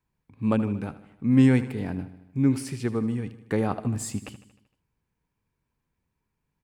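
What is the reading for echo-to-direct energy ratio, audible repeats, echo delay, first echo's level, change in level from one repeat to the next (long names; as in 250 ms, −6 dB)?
−13.0 dB, 5, 77 ms, −15.0 dB, −4.5 dB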